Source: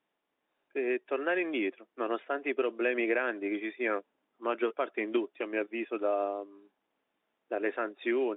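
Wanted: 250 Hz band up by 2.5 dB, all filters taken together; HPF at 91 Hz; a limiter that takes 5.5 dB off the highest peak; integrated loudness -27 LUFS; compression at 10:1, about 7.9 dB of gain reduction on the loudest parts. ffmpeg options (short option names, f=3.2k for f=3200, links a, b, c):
-af "highpass=91,equalizer=f=250:t=o:g=4,acompressor=threshold=-31dB:ratio=10,volume=11.5dB,alimiter=limit=-15.5dB:level=0:latency=1"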